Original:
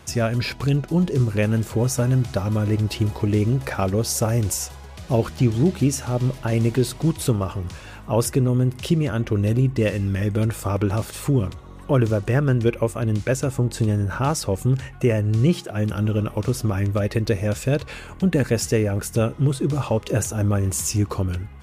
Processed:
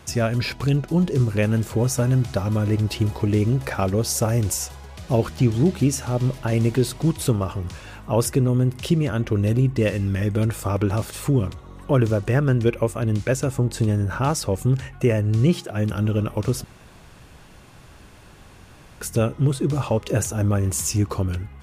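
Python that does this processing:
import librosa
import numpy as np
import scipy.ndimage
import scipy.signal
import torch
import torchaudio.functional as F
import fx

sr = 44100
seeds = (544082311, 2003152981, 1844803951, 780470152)

y = fx.edit(x, sr, fx.room_tone_fill(start_s=16.64, length_s=2.37), tone=tone)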